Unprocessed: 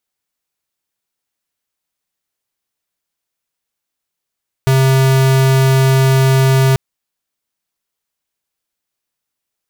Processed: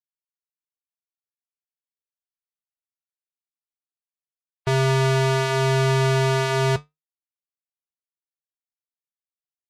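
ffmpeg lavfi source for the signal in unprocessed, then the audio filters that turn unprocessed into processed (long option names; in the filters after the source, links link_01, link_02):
-f lavfi -i "aevalsrc='0.299*(2*lt(mod(133*t,1),0.5)-1)':duration=2.09:sample_rate=44100"
-af "afftdn=noise_reduction=28:noise_floor=-29,lowshelf=frequency=130:gain=-12,flanger=delay=9.8:depth=1.4:regen=-67:speed=1:shape=triangular"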